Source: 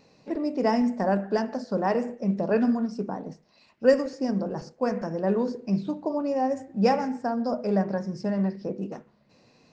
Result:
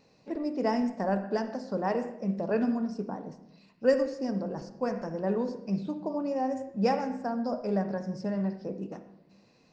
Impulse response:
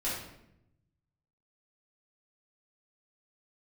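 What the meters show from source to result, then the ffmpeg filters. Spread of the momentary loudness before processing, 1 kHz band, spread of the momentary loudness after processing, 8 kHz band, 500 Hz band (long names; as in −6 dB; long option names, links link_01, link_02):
10 LU, −4.5 dB, 10 LU, can't be measured, −4.0 dB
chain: -filter_complex "[0:a]asplit=2[link_01][link_02];[1:a]atrim=start_sample=2205,lowpass=5400,adelay=57[link_03];[link_02][link_03]afir=irnorm=-1:irlink=0,volume=-17.5dB[link_04];[link_01][link_04]amix=inputs=2:normalize=0,volume=-4.5dB"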